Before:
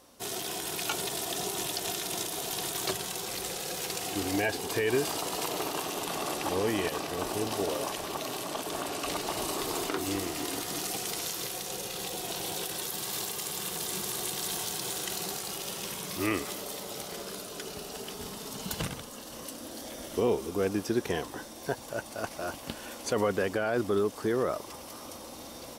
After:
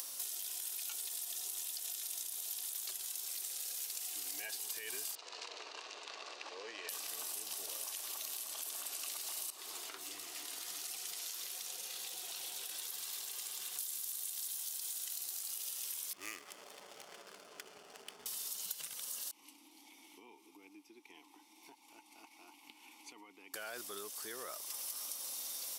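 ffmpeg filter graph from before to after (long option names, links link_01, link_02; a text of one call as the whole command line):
ffmpeg -i in.wav -filter_complex "[0:a]asettb=1/sr,asplit=3[link_01][link_02][link_03];[link_01]atrim=end=5.154[link_04];[link_02]atrim=start=5.15:end=6.89,asetpts=PTS-STARTPTS,afade=type=in:duration=0.004:curve=qsin,afade=type=out:start_time=1.736:duration=0.004:curve=qsin,adynamicsmooth=sensitivity=6.5:basefreq=1800,highpass=390,equalizer=frequency=470:width_type=q:width=4:gain=4,equalizer=frequency=790:width_type=q:width=4:gain=-5,equalizer=frequency=1300:width_type=q:width=4:gain=-3,equalizer=frequency=2000:width_type=q:width=4:gain=-3,equalizer=frequency=3300:width_type=q:width=4:gain=-7,equalizer=frequency=5500:width_type=q:width=4:gain=-4,lowpass=frequency=5800:width=0.5412,lowpass=frequency=5800:width=1.3066[link_05];[link_03]atrim=start=6.886[link_06];[link_04][link_05]acrossfade=duration=0.004:curve1=hsin:curve2=qsin[link_07];[link_07][link_06]acrossfade=duration=0.004:curve1=qsin:curve2=hsin,asettb=1/sr,asplit=3[link_08][link_09][link_10];[link_08]atrim=end=9.504[link_11];[link_09]atrim=start=9.5:end=13.79,asetpts=PTS-STARTPTS,afade=type=in:duration=0.004:curve=qsin,afade=type=out:start_time=4.286:duration=0.004:curve=qsin,lowpass=frequency=2900:poles=1,flanger=delay=0.7:depth=8.6:regen=63:speed=1.4:shape=sinusoidal[link_12];[link_10]atrim=start=13.786[link_13];[link_11][link_12]acrossfade=duration=0.004:curve1=hsin:curve2=qsin[link_14];[link_14][link_13]acrossfade=duration=0.004:curve1=qsin:curve2=hsin,asettb=1/sr,asplit=3[link_15][link_16][link_17];[link_15]atrim=end=16.134[link_18];[link_16]atrim=start=16.13:end=18.26,asetpts=PTS-STARTPTS,afade=type=in:duration=0.004:curve=qsin,afade=type=out:start_time=2.126:duration=0.004:curve=qsin,adynamicsmooth=sensitivity=7.5:basefreq=560,bandreject=frequency=3900:width=8.3[link_19];[link_17]atrim=start=18.256[link_20];[link_18][link_19]acrossfade=duration=0.004:curve1=hsin:curve2=qsin[link_21];[link_21][link_20]acrossfade=duration=0.004:curve1=qsin:curve2=hsin,asettb=1/sr,asplit=3[link_22][link_23][link_24];[link_22]atrim=end=19.314[link_25];[link_23]atrim=start=19.31:end=23.54,asetpts=PTS-STARTPTS,afade=type=in:duration=0.004:curve=qsin,afade=type=out:start_time=4.226:duration=0.004:curve=qsin,asplit=3[link_26][link_27][link_28];[link_26]bandpass=frequency=300:width_type=q:width=8,volume=0dB[link_29];[link_27]bandpass=frequency=870:width_type=q:width=8,volume=-6dB[link_30];[link_28]bandpass=frequency=2240:width_type=q:width=8,volume=-9dB[link_31];[link_29][link_30][link_31]amix=inputs=3:normalize=0,equalizer=frequency=12000:width=2.4:gain=6.5[link_32];[link_24]atrim=start=23.536[link_33];[link_25][link_32]acrossfade=duration=0.004:curve1=hsin:curve2=qsin[link_34];[link_34][link_33]acrossfade=duration=0.004:curve1=qsin:curve2=hsin,acompressor=mode=upward:threshold=-31dB:ratio=2.5,aderivative,acompressor=threshold=-42dB:ratio=5,volume=3dB" out.wav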